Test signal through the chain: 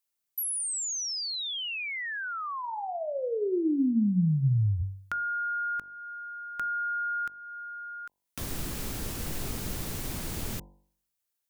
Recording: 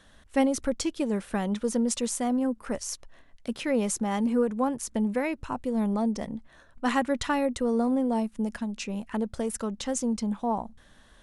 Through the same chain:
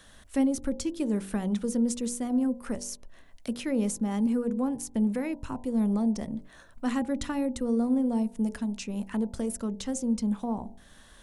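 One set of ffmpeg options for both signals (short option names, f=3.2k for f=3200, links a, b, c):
-filter_complex "[0:a]highshelf=f=6.3k:g=9,acrossover=split=370[a][b];[b]acompressor=threshold=-46dB:ratio=2[c];[a][c]amix=inputs=2:normalize=0,bandreject=f=48.27:t=h:w=4,bandreject=f=96.54:t=h:w=4,bandreject=f=144.81:t=h:w=4,bandreject=f=193.08:t=h:w=4,bandreject=f=241.35:t=h:w=4,bandreject=f=289.62:t=h:w=4,bandreject=f=337.89:t=h:w=4,bandreject=f=386.16:t=h:w=4,bandreject=f=434.43:t=h:w=4,bandreject=f=482.7:t=h:w=4,bandreject=f=530.97:t=h:w=4,bandreject=f=579.24:t=h:w=4,bandreject=f=627.51:t=h:w=4,bandreject=f=675.78:t=h:w=4,bandreject=f=724.05:t=h:w=4,bandreject=f=772.32:t=h:w=4,bandreject=f=820.59:t=h:w=4,bandreject=f=868.86:t=h:w=4,bandreject=f=917.13:t=h:w=4,bandreject=f=965.4:t=h:w=4,bandreject=f=1.01367k:t=h:w=4,volume=2dB"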